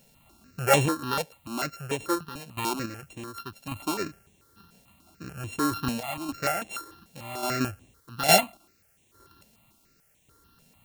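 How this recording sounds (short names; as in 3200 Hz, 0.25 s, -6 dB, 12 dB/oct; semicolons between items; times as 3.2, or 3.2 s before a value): a buzz of ramps at a fixed pitch in blocks of 32 samples; random-step tremolo, depth 80%; a quantiser's noise floor 12-bit, dither triangular; notches that jump at a steady rate 6.8 Hz 330–4800 Hz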